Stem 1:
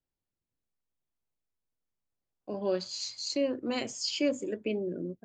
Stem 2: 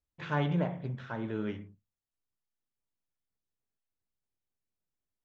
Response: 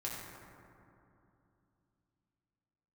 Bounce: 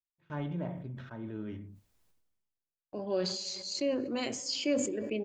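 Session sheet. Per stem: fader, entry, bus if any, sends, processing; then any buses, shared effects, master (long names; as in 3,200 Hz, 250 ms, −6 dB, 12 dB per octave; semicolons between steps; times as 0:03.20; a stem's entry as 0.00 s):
−3.0 dB, 0.45 s, send −18 dB, no processing
−12.0 dB, 0.00 s, no send, low-shelf EQ 410 Hz +9.5 dB; comb filter 3.2 ms, depth 33%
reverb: on, RT60 2.8 s, pre-delay 4 ms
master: noise gate with hold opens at −39 dBFS; level that may fall only so fast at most 47 dB per second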